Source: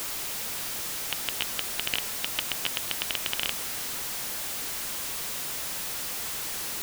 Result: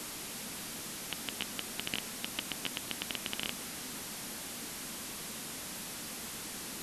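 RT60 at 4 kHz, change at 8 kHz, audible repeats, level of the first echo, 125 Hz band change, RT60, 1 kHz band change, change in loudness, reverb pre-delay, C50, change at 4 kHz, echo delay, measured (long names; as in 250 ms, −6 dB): no reverb audible, −7.5 dB, no echo audible, no echo audible, −2.5 dB, no reverb audible, −7.0 dB, −9.0 dB, no reverb audible, no reverb audible, −7.5 dB, no echo audible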